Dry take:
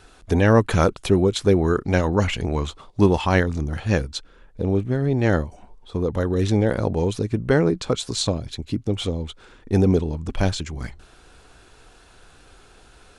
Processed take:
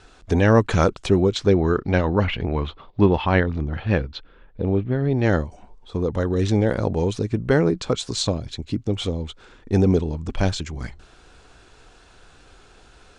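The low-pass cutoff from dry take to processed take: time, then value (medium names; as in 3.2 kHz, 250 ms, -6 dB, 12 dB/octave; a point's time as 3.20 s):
low-pass 24 dB/octave
1.08 s 8 kHz
2.29 s 3.7 kHz
4.96 s 3.7 kHz
5.42 s 8.4 kHz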